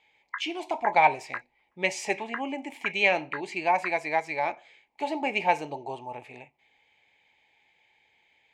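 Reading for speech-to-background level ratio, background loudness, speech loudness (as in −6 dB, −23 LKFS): 12.5 dB, −40.5 LKFS, −28.0 LKFS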